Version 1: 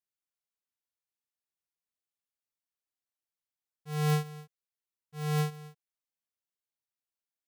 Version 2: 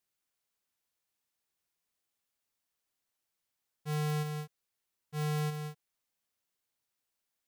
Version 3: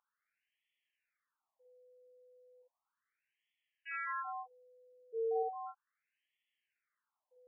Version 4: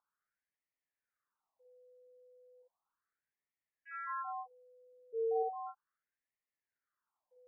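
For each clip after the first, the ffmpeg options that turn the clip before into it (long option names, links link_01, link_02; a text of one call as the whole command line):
ffmpeg -i in.wav -af "asoftclip=type=tanh:threshold=-39.5dB,volume=8dB" out.wav
ffmpeg -i in.wav -af "aeval=exprs='val(0)+0.000355*sin(2*PI*500*n/s)':channel_layout=same,afftfilt=real='re*between(b*sr/1024,420*pow(2500/420,0.5+0.5*sin(2*PI*0.35*pts/sr))/1.41,420*pow(2500/420,0.5+0.5*sin(2*PI*0.35*pts/sr))*1.41)':imag='im*between(b*sr/1024,420*pow(2500/420,0.5+0.5*sin(2*PI*0.35*pts/sr))/1.41,420*pow(2500/420,0.5+0.5*sin(2*PI*0.35*pts/sr))*1.41)':win_size=1024:overlap=0.75,volume=8dB" out.wav
ffmpeg -i in.wav -af "lowpass=frequency=1500:width=0.5412,lowpass=frequency=1500:width=1.3066,volume=1dB" out.wav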